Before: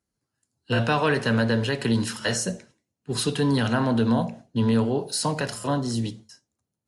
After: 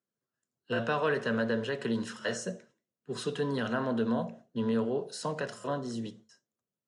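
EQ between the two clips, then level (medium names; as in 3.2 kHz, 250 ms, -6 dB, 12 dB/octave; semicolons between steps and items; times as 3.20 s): cabinet simulation 230–8500 Hz, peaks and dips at 290 Hz -8 dB, 840 Hz -9 dB, 2.3 kHz -6 dB, 4.5 kHz -6 dB; treble shelf 2.7 kHz -9 dB; -3.0 dB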